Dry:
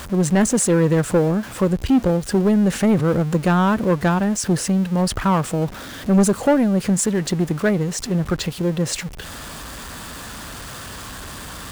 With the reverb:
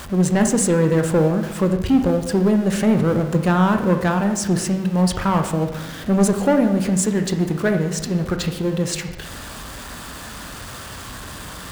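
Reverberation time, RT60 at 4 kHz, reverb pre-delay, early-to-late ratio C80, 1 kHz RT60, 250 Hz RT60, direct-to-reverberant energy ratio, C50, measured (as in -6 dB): 1.1 s, 0.85 s, 17 ms, 10.5 dB, 1.0 s, 1.3 s, 5.5 dB, 8.0 dB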